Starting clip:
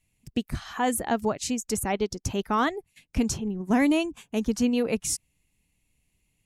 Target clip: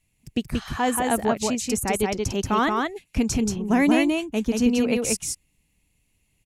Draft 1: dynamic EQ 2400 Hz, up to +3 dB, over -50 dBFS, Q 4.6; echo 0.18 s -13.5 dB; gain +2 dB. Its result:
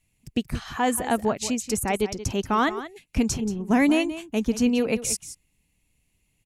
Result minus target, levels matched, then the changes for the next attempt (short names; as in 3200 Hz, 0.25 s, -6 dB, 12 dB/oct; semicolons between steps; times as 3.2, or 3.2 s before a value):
echo-to-direct -10.5 dB
change: echo 0.18 s -3 dB